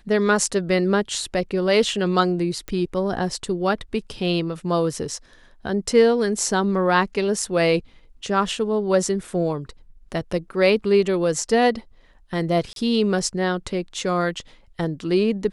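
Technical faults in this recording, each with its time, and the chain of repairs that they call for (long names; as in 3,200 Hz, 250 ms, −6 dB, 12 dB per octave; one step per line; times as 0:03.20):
0:02.68: click −16 dBFS
0:12.73–0:12.76: drop-out 32 ms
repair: click removal
repair the gap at 0:12.73, 32 ms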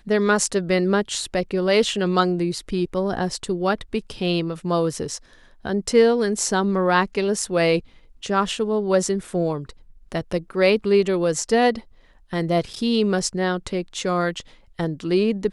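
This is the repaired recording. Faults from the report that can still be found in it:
none of them is left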